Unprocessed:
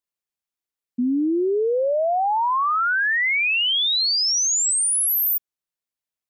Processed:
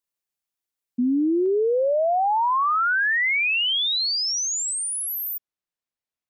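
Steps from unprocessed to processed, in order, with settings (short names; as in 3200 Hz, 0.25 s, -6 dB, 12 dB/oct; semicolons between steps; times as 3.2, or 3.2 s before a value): high shelf 5800 Hz +3.5 dB, from 1.46 s -9 dB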